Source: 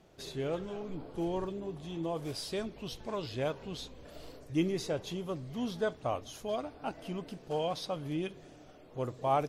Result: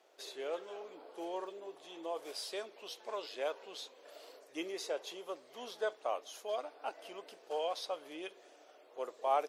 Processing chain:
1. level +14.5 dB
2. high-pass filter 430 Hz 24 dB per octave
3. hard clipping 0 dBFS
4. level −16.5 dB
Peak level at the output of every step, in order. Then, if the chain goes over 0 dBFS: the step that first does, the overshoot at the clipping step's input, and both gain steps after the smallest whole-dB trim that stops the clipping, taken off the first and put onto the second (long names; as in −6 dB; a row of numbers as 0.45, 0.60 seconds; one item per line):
−3.5, −3.5, −3.5, −20.0 dBFS
no step passes full scale